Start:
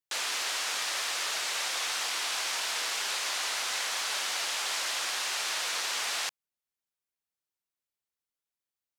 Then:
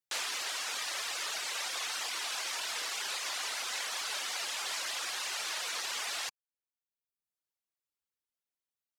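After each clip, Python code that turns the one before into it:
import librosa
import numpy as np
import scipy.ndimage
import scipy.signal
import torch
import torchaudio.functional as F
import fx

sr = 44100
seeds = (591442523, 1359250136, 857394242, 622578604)

y = fx.dereverb_blind(x, sr, rt60_s=0.92)
y = F.gain(torch.from_numpy(y), -2.0).numpy()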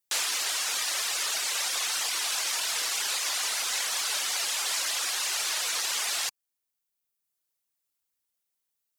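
y = fx.high_shelf(x, sr, hz=5800.0, db=10.0)
y = F.gain(torch.from_numpy(y), 3.5).numpy()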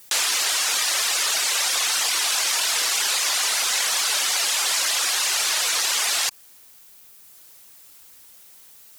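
y = fx.env_flatten(x, sr, amount_pct=50)
y = F.gain(torch.from_numpy(y), 6.0).numpy()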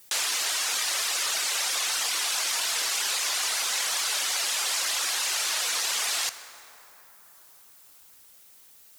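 y = fx.rev_plate(x, sr, seeds[0], rt60_s=4.0, hf_ratio=0.45, predelay_ms=0, drr_db=11.0)
y = F.gain(torch.from_numpy(y), -5.5).numpy()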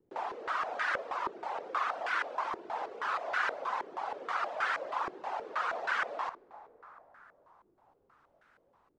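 y = fx.filter_held_lowpass(x, sr, hz=6.3, low_hz=370.0, high_hz=1500.0)
y = F.gain(torch.from_numpy(y), -2.0).numpy()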